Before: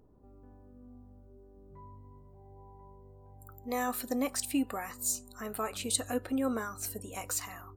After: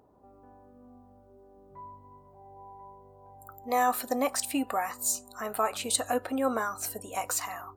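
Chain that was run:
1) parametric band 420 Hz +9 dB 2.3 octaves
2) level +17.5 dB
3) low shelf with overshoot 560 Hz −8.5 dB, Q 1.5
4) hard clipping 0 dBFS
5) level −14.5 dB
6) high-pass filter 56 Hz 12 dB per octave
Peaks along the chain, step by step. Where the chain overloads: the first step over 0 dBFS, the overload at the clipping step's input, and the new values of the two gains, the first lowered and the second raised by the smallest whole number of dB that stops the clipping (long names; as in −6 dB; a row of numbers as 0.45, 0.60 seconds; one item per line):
−13.5, +4.0, +3.5, 0.0, −14.5, −14.0 dBFS
step 2, 3.5 dB
step 2 +13.5 dB, step 5 −10.5 dB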